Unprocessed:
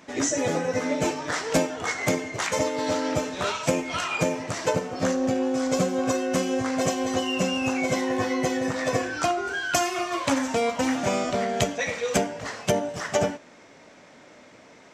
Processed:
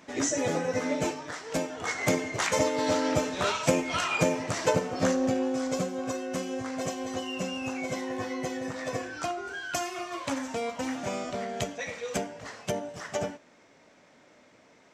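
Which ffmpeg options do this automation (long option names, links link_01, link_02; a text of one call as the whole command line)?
ffmpeg -i in.wav -af "volume=8.5dB,afade=type=out:start_time=0.96:duration=0.43:silence=0.354813,afade=type=in:start_time=1.39:duration=0.84:silence=0.266073,afade=type=out:start_time=5:duration=0.93:silence=0.421697" out.wav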